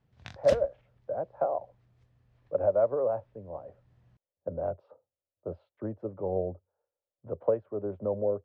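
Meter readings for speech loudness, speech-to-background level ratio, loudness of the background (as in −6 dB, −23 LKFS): −31.5 LKFS, 11.0 dB, −42.5 LKFS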